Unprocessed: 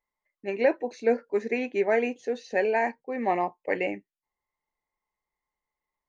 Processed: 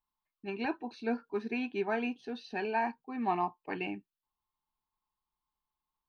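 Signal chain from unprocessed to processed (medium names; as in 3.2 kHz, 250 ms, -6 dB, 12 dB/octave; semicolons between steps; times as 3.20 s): static phaser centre 2 kHz, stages 6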